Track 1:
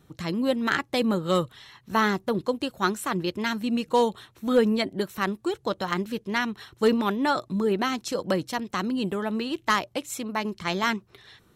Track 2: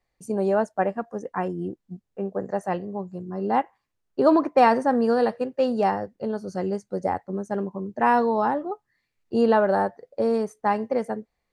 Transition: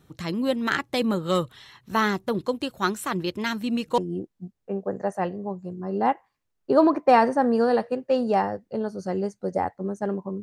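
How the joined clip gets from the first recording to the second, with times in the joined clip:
track 1
3.98 s: go over to track 2 from 1.47 s

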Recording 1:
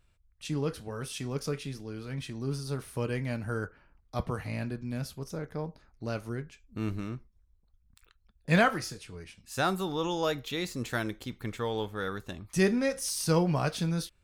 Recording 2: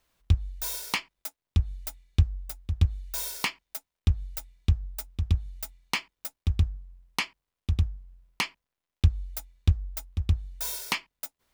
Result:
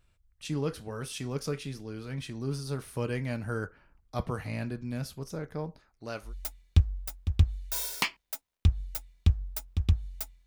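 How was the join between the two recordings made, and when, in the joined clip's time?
recording 1
5.80–6.34 s: bass shelf 300 Hz -11 dB
6.28 s: go over to recording 2 from 1.70 s, crossfade 0.12 s

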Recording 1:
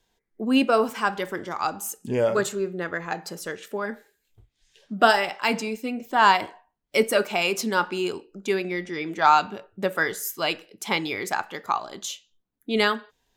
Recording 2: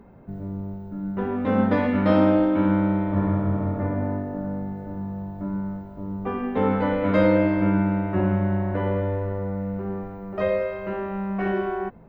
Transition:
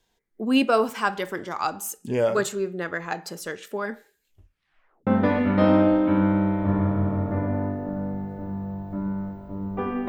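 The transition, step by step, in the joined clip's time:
recording 1
4.30 s: tape stop 0.77 s
5.07 s: go over to recording 2 from 1.55 s

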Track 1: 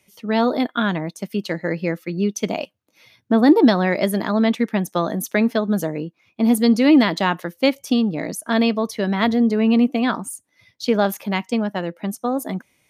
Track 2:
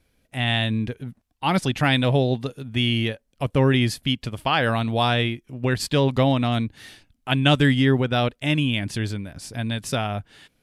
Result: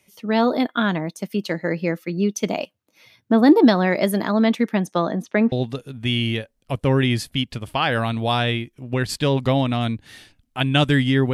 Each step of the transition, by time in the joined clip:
track 1
4.79–5.52 s: low-pass 8.9 kHz -> 1.7 kHz
5.52 s: go over to track 2 from 2.23 s

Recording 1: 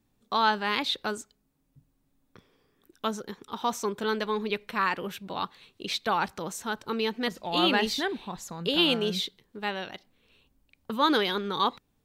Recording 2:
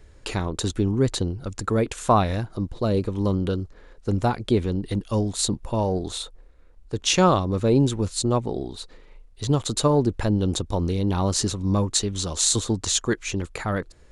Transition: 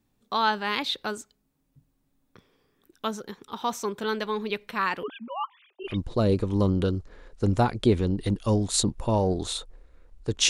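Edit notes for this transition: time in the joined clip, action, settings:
recording 1
5.03–6.00 s: formants replaced by sine waves
5.91 s: go over to recording 2 from 2.56 s, crossfade 0.18 s

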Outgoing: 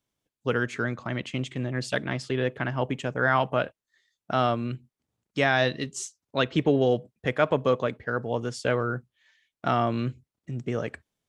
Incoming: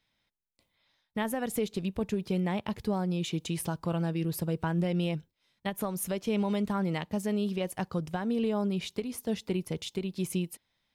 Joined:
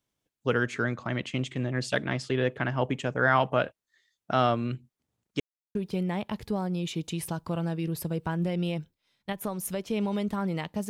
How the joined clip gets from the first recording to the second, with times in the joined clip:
outgoing
5.40–5.75 s: mute
5.75 s: go over to incoming from 2.12 s

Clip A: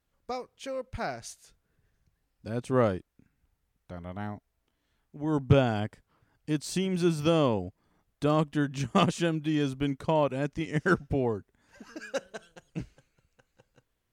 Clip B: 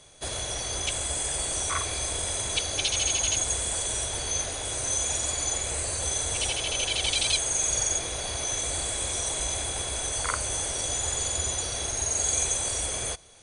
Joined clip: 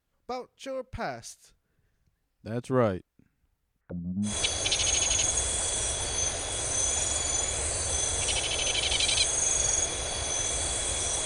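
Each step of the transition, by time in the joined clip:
clip A
3.81–4.36 s: touch-sensitive low-pass 200–1700 Hz down, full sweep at -38 dBFS
4.29 s: go over to clip B from 2.42 s, crossfade 0.14 s

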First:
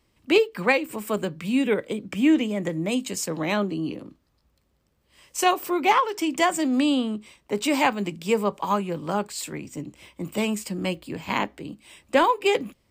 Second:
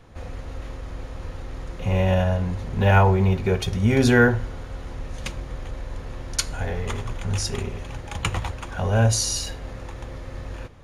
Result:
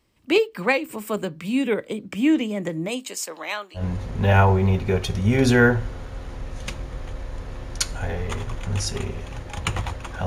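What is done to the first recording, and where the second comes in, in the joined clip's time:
first
2.87–3.84 s: high-pass 290 Hz -> 1.5 kHz
3.79 s: go over to second from 2.37 s, crossfade 0.10 s

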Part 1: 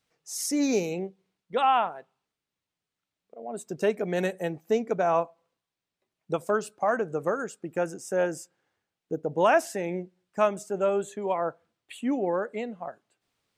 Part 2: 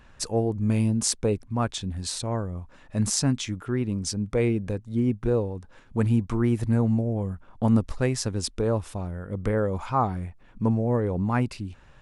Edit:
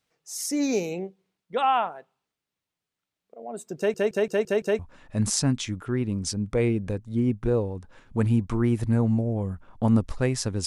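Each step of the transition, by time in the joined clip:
part 1
3.77 s: stutter in place 0.17 s, 6 plays
4.79 s: go over to part 2 from 2.59 s

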